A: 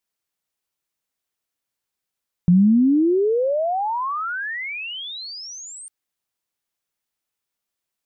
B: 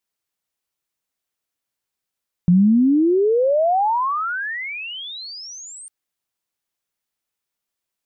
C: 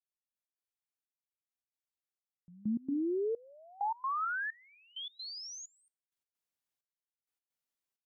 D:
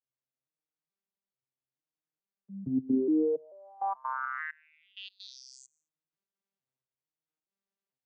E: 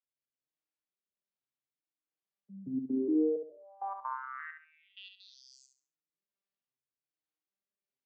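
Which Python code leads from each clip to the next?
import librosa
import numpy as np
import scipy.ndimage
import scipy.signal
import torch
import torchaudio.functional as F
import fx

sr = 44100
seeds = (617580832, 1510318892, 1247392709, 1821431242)

y1 = fx.dynamic_eq(x, sr, hz=790.0, q=0.9, threshold_db=-38.0, ratio=4.0, max_db=5)
y2 = fx.rider(y1, sr, range_db=4, speed_s=0.5)
y2 = fx.comb_fb(y2, sr, f0_hz=260.0, decay_s=0.36, harmonics='odd', damping=0.0, mix_pct=50)
y2 = fx.step_gate(y2, sr, bpm=130, pattern='...x.xxxx.', floor_db=-24.0, edge_ms=4.5)
y2 = y2 * 10.0 ** (-8.0 / 20.0)
y3 = fx.vocoder_arp(y2, sr, chord='minor triad', root=48, every_ms=439)
y3 = y3 * 10.0 ** (5.0 / 20.0)
y4 = fx.rotary(y3, sr, hz=1.2)
y4 = fx.bandpass_edges(y4, sr, low_hz=180.0, high_hz=4800.0)
y4 = fx.echo_feedback(y4, sr, ms=68, feedback_pct=31, wet_db=-6.5)
y4 = y4 * 10.0 ** (-2.0 / 20.0)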